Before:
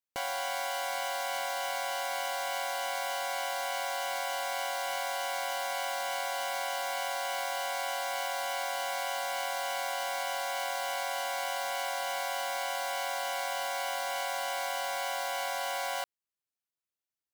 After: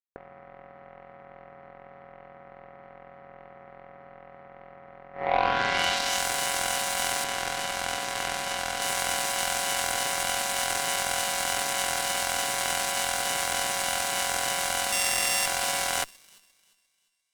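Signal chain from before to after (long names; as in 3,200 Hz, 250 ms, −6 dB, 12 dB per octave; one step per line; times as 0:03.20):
0:14.92–0:15.46: samples sorted by size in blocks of 16 samples
low-shelf EQ 230 Hz −9 dB
delay with a high-pass on its return 349 ms, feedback 57%, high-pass 2,500 Hz, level −9 dB
low-pass filter sweep 430 Hz → 9,000 Hz, 0:05.12–0:06.26
0:07.24–0:08.82: high-frequency loss of the air 57 metres
harmonic generator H 5 −12 dB, 7 −10 dB, 8 −28 dB, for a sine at −16.5 dBFS
level +7 dB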